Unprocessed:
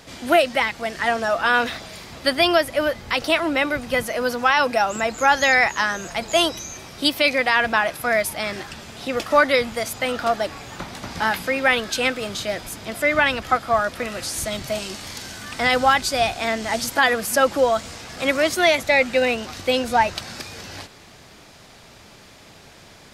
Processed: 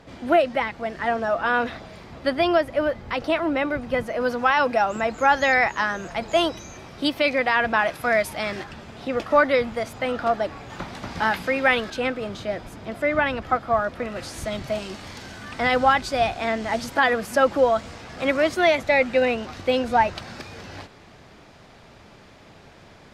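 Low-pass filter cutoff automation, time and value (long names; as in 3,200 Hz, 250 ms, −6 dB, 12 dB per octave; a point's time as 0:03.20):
low-pass filter 6 dB per octave
1,100 Hz
from 0:04.20 1,800 Hz
from 0:07.79 3,300 Hz
from 0:08.64 1,500 Hz
from 0:10.70 3,000 Hz
from 0:11.90 1,100 Hz
from 0:14.16 1,900 Hz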